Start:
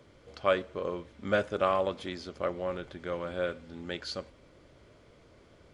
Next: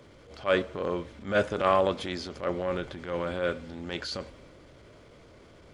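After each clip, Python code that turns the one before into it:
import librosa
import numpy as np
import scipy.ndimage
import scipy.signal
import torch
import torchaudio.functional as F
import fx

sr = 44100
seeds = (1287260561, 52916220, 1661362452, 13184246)

y = fx.transient(x, sr, attack_db=-11, sustain_db=2)
y = F.gain(torch.from_numpy(y), 5.5).numpy()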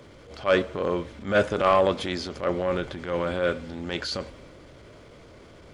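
y = 10.0 ** (-12.0 / 20.0) * np.tanh(x / 10.0 ** (-12.0 / 20.0))
y = F.gain(torch.from_numpy(y), 4.5).numpy()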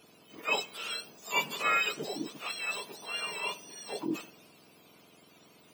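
y = fx.octave_mirror(x, sr, pivot_hz=1200.0)
y = F.gain(torch.from_numpy(y), -6.0).numpy()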